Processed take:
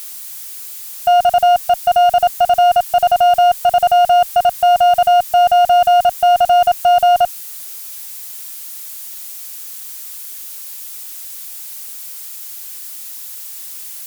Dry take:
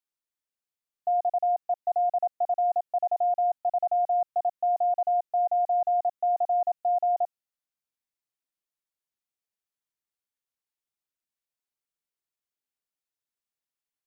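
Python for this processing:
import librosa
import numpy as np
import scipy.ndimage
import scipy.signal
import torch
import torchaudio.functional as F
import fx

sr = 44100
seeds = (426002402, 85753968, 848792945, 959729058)

y = x + 0.5 * 10.0 ** (-32.5 / 20.0) * np.diff(np.sign(x), prepend=np.sign(x[:1]))
y = fx.peak_eq(y, sr, hz=530.0, db=6.5, octaves=2.5)
y = fx.cheby_harmonics(y, sr, harmonics=(2, 4, 6, 8), levels_db=(-15, -16, -29, -34), full_scale_db=-14.0)
y = y * 10.0 ** (8.0 / 20.0)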